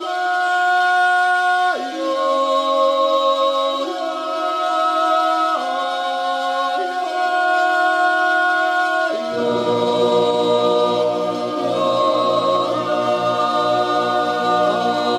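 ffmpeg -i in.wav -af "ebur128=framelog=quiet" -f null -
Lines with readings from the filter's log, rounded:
Integrated loudness:
  I:         -17.6 LUFS
  Threshold: -27.6 LUFS
Loudness range:
  LRA:         2.1 LU
  Threshold: -37.7 LUFS
  LRA low:   -18.8 LUFS
  LRA high:  -16.7 LUFS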